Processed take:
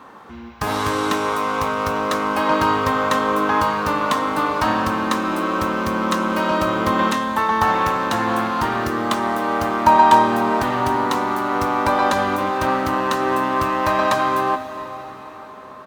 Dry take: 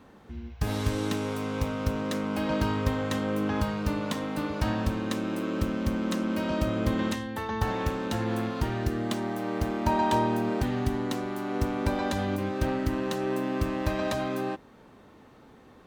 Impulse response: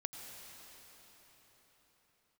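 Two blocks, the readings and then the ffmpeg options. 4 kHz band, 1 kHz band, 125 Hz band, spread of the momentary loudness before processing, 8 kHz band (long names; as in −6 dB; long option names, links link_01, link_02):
+9.5 dB, +16.5 dB, −0.5 dB, 4 LU, +9.0 dB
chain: -filter_complex "[0:a]highpass=frequency=310:poles=1,equalizer=frequency=1100:width_type=o:width=0.96:gain=11.5,asplit=2[link_01][link_02];[link_02]adelay=22,volume=-14dB[link_03];[link_01][link_03]amix=inputs=2:normalize=0,asplit=2[link_04][link_05];[1:a]atrim=start_sample=2205[link_06];[link_05][link_06]afir=irnorm=-1:irlink=0,volume=-0.5dB[link_07];[link_04][link_07]amix=inputs=2:normalize=0,volume=4dB"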